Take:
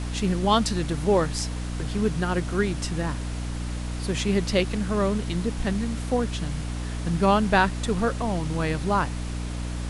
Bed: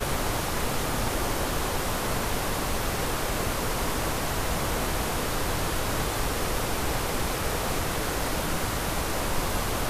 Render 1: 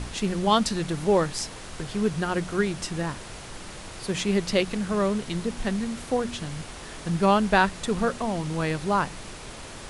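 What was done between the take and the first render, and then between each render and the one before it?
de-hum 60 Hz, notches 5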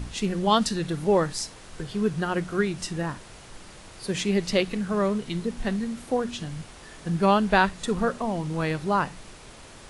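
noise print and reduce 6 dB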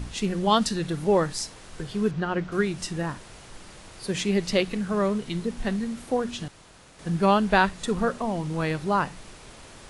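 2.11–2.52 s: distance through air 130 m; 6.48–6.99 s: room tone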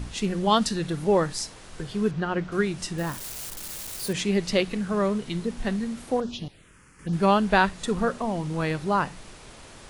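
2.98–4.13 s: zero-crossing glitches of -28.5 dBFS; 6.20–7.13 s: touch-sensitive phaser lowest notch 580 Hz, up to 2.1 kHz, full sweep at -27 dBFS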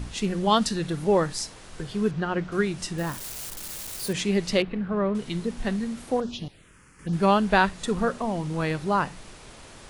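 4.62–5.15 s: distance through air 410 m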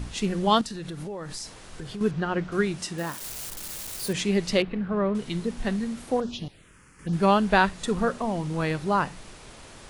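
0.61–2.01 s: compression 16:1, threshold -31 dBFS; 2.76–3.21 s: high-pass 100 Hz -> 380 Hz 6 dB/octave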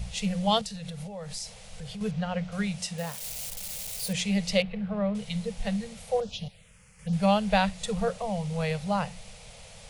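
elliptic band-stop 200–470 Hz, stop band 40 dB; high-order bell 1.3 kHz -8.5 dB 1.1 oct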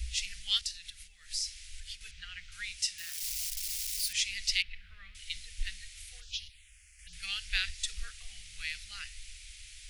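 inverse Chebyshev band-stop 130–990 Hz, stop band 40 dB; dynamic bell 5.3 kHz, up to +5 dB, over -51 dBFS, Q 2.8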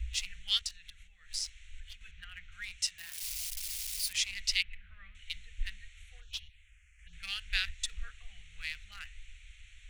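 local Wiener filter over 9 samples; band-stop 430 Hz, Q 12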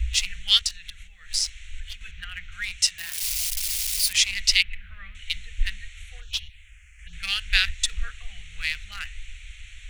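trim +11.5 dB; peak limiter -3 dBFS, peak gain reduction 1.5 dB

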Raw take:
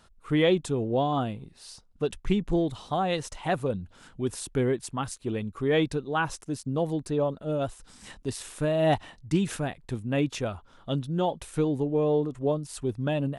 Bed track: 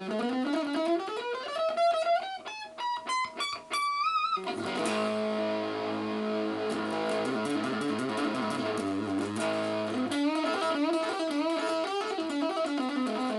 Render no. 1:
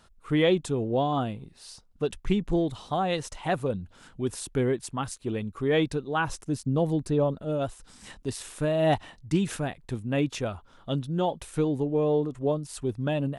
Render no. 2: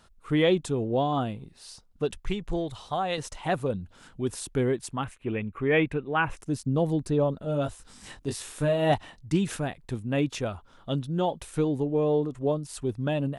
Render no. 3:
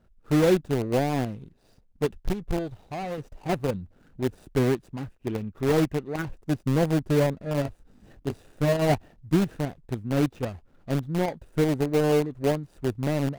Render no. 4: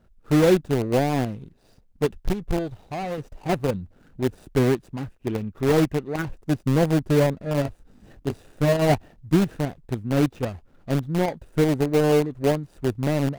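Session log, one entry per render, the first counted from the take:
6.27–7.45 s: bass shelf 270 Hz +6 dB
2.17–3.18 s: peaking EQ 240 Hz -9.5 dB 1.2 oct; 5.04–6.37 s: resonant high shelf 3.4 kHz -12 dB, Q 3; 7.42–8.92 s: doubling 21 ms -5 dB
median filter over 41 samples; in parallel at -7 dB: bit crusher 4-bit
trim +3 dB

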